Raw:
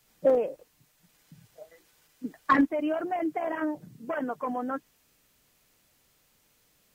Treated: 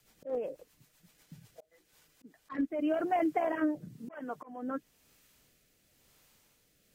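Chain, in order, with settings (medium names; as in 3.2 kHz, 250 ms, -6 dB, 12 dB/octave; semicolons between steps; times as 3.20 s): slow attack 417 ms; rotary cabinet horn 8 Hz, later 1 Hz, at 1.43 s; trim +2 dB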